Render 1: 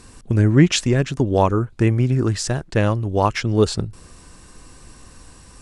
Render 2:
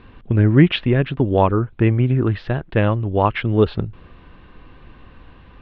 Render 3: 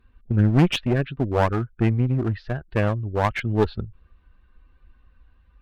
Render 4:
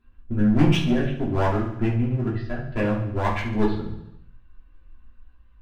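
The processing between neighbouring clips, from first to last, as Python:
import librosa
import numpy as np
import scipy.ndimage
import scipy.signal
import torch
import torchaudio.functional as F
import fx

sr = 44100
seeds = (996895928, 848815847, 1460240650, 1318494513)

y1 = scipy.signal.sosfilt(scipy.signal.butter(8, 3500.0, 'lowpass', fs=sr, output='sos'), x)
y1 = F.gain(torch.from_numpy(y1), 1.0).numpy()
y2 = fx.bin_expand(y1, sr, power=1.5)
y2 = fx.clip_asym(y2, sr, top_db=-24.0, bottom_db=-7.0)
y3 = fx.echo_feedback(y2, sr, ms=71, feedback_pct=59, wet_db=-11.0)
y3 = fx.room_shoebox(y3, sr, seeds[0], volume_m3=220.0, walls='furnished', distance_m=3.0)
y3 = F.gain(torch.from_numpy(y3), -8.0).numpy()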